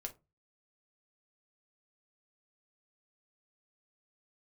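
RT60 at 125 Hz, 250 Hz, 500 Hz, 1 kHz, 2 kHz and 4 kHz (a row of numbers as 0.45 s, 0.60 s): 0.45 s, 0.35 s, 0.25 s, 0.25 s, 0.15 s, 0.15 s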